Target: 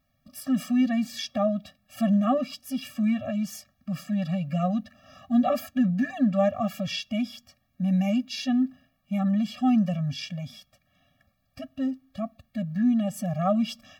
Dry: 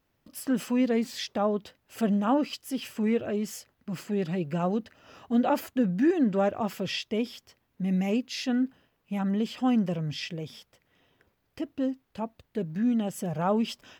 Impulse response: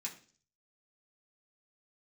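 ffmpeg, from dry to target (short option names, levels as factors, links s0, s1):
-filter_complex "[0:a]asplit=2[s0][s1];[s1]acrossover=split=160 6800:gain=0.0891 1 0.158[s2][s3][s4];[s2][s3][s4]amix=inputs=3:normalize=0[s5];[1:a]atrim=start_sample=2205[s6];[s5][s6]afir=irnorm=-1:irlink=0,volume=0.126[s7];[s0][s7]amix=inputs=2:normalize=0,afftfilt=real='re*eq(mod(floor(b*sr/1024/270),2),0)':imag='im*eq(mod(floor(b*sr/1024/270),2),0)':win_size=1024:overlap=0.75,volume=1.5"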